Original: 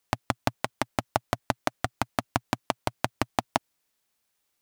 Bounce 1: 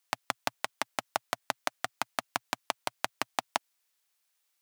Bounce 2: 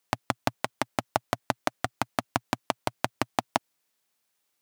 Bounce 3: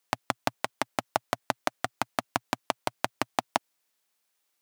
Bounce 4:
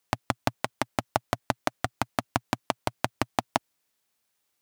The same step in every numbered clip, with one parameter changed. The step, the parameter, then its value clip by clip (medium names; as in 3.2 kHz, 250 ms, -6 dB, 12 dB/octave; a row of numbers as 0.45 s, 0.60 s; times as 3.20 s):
high-pass, cutoff frequency: 1.2 kHz, 130 Hz, 340 Hz, 49 Hz